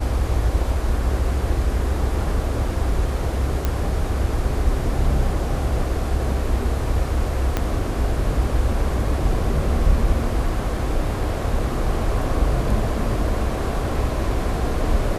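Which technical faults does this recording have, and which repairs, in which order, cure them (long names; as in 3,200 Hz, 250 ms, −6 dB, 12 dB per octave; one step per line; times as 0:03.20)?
0:03.65: click −8 dBFS
0:07.57: click −7 dBFS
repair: click removal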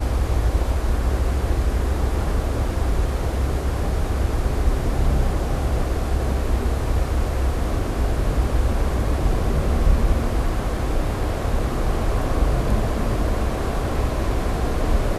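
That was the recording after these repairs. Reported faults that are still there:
0:07.57: click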